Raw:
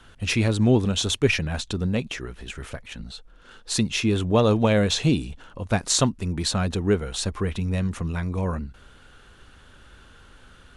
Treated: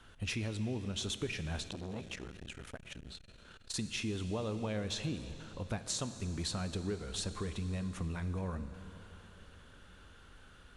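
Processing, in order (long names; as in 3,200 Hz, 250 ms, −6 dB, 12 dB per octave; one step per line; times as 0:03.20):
downward compressor, threshold −27 dBFS, peak gain reduction 13.5 dB
dense smooth reverb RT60 4.1 s, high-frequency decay 0.95×, DRR 10 dB
0:01.68–0:03.74: saturating transformer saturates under 790 Hz
level −7.5 dB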